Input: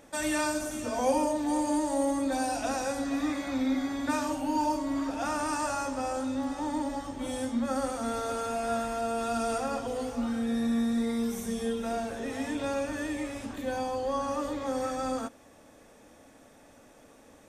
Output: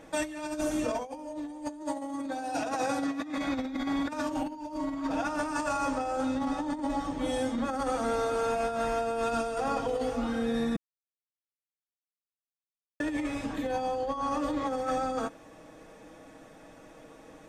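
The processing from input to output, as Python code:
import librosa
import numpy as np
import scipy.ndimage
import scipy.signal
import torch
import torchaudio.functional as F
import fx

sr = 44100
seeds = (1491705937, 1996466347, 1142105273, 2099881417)

y = fx.highpass(x, sr, hz=110.0, slope=12, at=(1.82, 3.38))
y = fx.edit(y, sr, fx.silence(start_s=10.76, length_s=2.24), tone=tone)
y = fx.high_shelf(y, sr, hz=5900.0, db=-11.0)
y = y + 0.52 * np.pad(y, (int(6.3 * sr / 1000.0), 0))[:len(y)]
y = fx.over_compress(y, sr, threshold_db=-32.0, ratio=-0.5)
y = y * librosa.db_to_amplitude(1.5)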